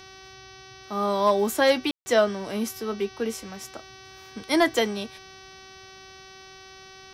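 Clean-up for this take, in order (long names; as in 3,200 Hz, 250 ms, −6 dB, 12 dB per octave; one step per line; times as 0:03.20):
clipped peaks rebuilt −10.5 dBFS
hum removal 380.9 Hz, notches 16
ambience match 0:01.91–0:02.06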